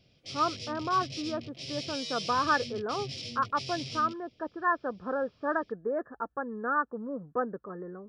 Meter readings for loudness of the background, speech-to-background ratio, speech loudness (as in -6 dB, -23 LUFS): -38.5 LUFS, 6.0 dB, -32.5 LUFS